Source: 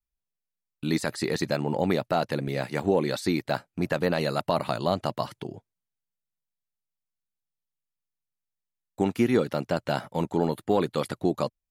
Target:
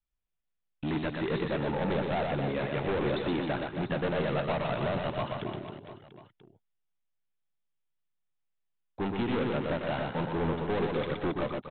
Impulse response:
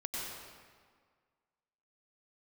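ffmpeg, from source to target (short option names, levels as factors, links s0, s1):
-af "aresample=8000,volume=25.1,asoftclip=hard,volume=0.0398,aresample=44100,aecho=1:1:120|270|457.5|691.9|984.8:0.631|0.398|0.251|0.158|0.1"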